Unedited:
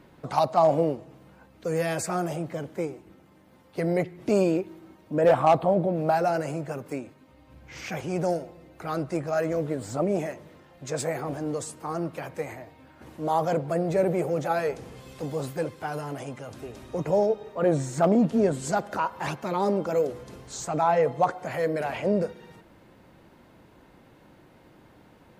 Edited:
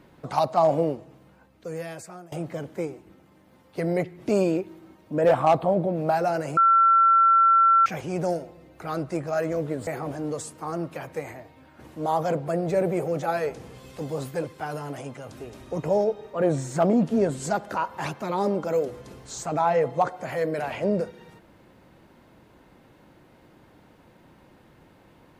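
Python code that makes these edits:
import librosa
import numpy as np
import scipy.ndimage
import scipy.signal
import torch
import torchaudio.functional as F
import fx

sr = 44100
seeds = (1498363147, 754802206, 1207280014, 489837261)

y = fx.edit(x, sr, fx.fade_out_to(start_s=0.94, length_s=1.38, floor_db=-21.5),
    fx.bleep(start_s=6.57, length_s=1.29, hz=1350.0, db=-14.0),
    fx.cut(start_s=9.87, length_s=1.22), tone=tone)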